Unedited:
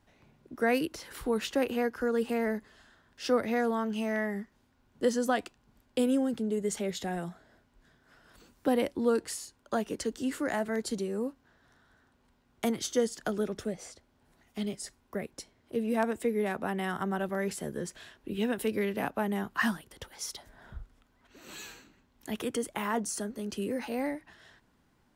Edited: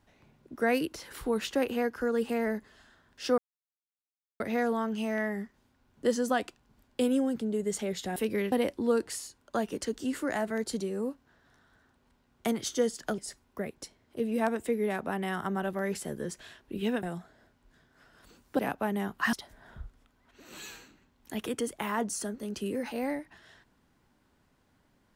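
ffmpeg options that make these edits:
-filter_complex "[0:a]asplit=8[a][b][c][d][e][f][g][h];[a]atrim=end=3.38,asetpts=PTS-STARTPTS,afade=t=out:st=3.376:d=0.004:c=hsin,apad=pad_dur=1.02[i];[b]atrim=start=3.38:end=7.142,asetpts=PTS-STARTPTS,afade=t=in:d=0.004:c=hsin[j];[c]atrim=start=18.588:end=18.952[k];[d]atrim=start=8.698:end=13.362[l];[e]atrim=start=14.738:end=18.592[m];[f]atrim=start=7.138:end=8.702[n];[g]atrim=start=18.948:end=19.692[o];[h]atrim=start=20.288[p];[i][j]concat=n=2:v=0:a=1[q];[q][k]acrossfade=d=0.004:c1=hsin:c2=hsin[r];[r][l]acrossfade=d=0.004:c1=hsin:c2=hsin[s];[s][m]acrossfade=d=0.004:c1=hsin:c2=hsin[t];[t][n]acrossfade=d=0.004:c1=hsin:c2=hsin[u];[u][o]acrossfade=d=0.004:c1=hsin:c2=hsin[v];[v][p]acrossfade=d=0.004:c1=hsin:c2=hsin"

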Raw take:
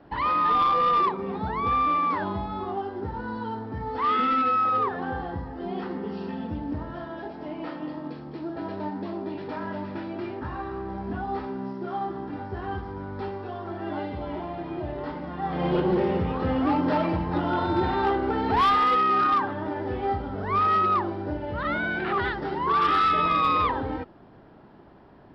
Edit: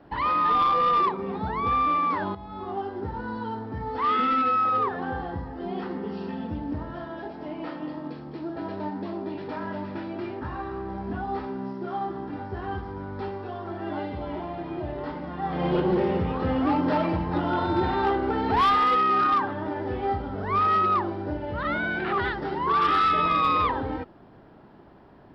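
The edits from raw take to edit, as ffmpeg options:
-filter_complex "[0:a]asplit=2[a][b];[a]atrim=end=2.35,asetpts=PTS-STARTPTS,afade=t=out:st=2.346:d=0.004:c=hsin:silence=0.199526[c];[b]atrim=start=2.35,asetpts=PTS-STARTPTS,afade=t=in:d=0.46:silence=0.199526[d];[c][d]concat=n=2:v=0:a=1"

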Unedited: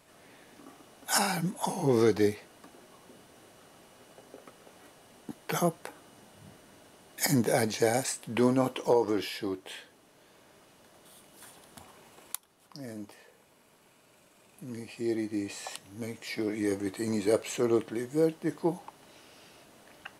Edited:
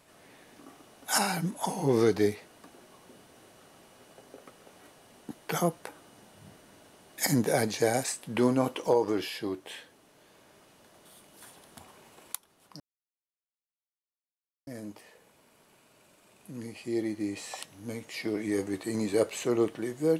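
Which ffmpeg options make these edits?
-filter_complex "[0:a]asplit=2[a][b];[a]atrim=end=12.8,asetpts=PTS-STARTPTS,afade=t=out:st=12.796:d=0.004:c=hsin,apad=pad_dur=1.87[c];[b]atrim=start=12.8,asetpts=PTS-STARTPTS,afade=t=in:d=0.004:c=hsin[d];[c][d]concat=n=2:v=0:a=1"

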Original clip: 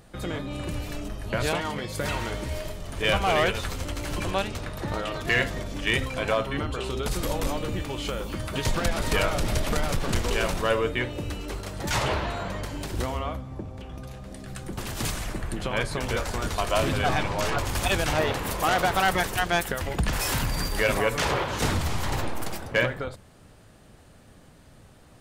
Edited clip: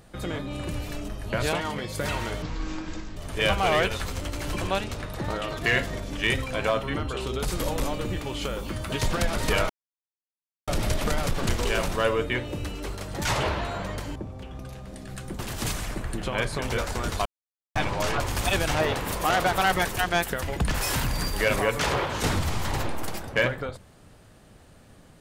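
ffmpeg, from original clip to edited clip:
-filter_complex "[0:a]asplit=7[a][b][c][d][e][f][g];[a]atrim=end=2.424[h];[b]atrim=start=2.42:end=2.8,asetpts=PTS-STARTPTS,asetrate=22491,aresample=44100[i];[c]atrim=start=2.796:end=9.33,asetpts=PTS-STARTPTS,afade=t=out:st=6.53:d=0.004:c=hsin,apad=pad_dur=0.98[j];[d]atrim=start=9.33:end=12.812,asetpts=PTS-STARTPTS,afade=t=in:d=0.004:c=hsin[k];[e]atrim=start=13.538:end=16.64,asetpts=PTS-STARTPTS,afade=t=out:st=3.098:d=0.004:c=hsin[l];[f]atrim=start=16.64:end=17.14,asetpts=PTS-STARTPTS,volume=0[m];[g]atrim=start=17.14,asetpts=PTS-STARTPTS,afade=t=in:d=0.004:c=hsin[n];[h][i]acrossfade=d=0.004:c1=hsin:c2=hsin[o];[j][k]concat=n=2:v=0:a=1[p];[o][p]acrossfade=d=0.004:c1=hsin:c2=hsin[q];[l][m][n]concat=n=3:v=0:a=1[r];[q][r]acrossfade=d=0.004:c1=hsin:c2=hsin"

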